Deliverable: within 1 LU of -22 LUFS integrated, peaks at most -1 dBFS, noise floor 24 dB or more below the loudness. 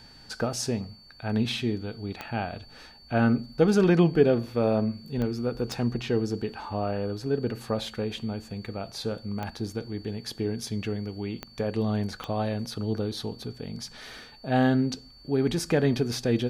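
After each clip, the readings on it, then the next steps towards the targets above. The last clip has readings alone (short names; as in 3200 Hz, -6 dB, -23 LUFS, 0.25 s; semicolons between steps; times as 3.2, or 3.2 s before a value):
clicks 6; steady tone 4500 Hz; tone level -51 dBFS; loudness -28.0 LUFS; peak -7.5 dBFS; loudness target -22.0 LUFS
-> de-click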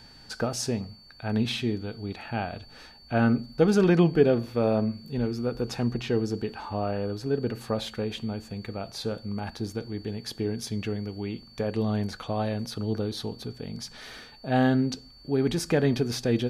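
clicks 0; steady tone 4500 Hz; tone level -51 dBFS
-> notch 4500 Hz, Q 30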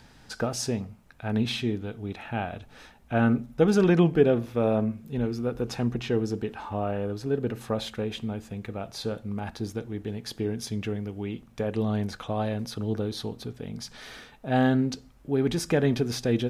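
steady tone none; loudness -28.5 LUFS; peak -8.0 dBFS; loudness target -22.0 LUFS
-> gain +6.5 dB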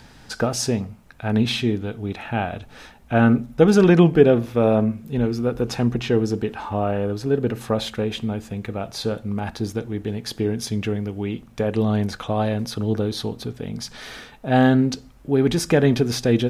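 loudness -22.0 LUFS; peak -1.5 dBFS; noise floor -48 dBFS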